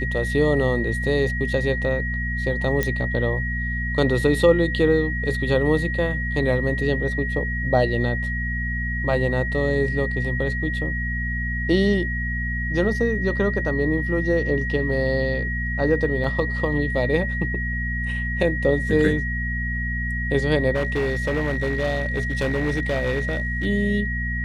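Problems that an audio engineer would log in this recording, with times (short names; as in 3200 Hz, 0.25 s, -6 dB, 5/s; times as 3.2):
hum 60 Hz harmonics 4 -27 dBFS
tone 1900 Hz -27 dBFS
2.83 pop -9 dBFS
16.24 gap 3.9 ms
20.74–23.66 clipped -18.5 dBFS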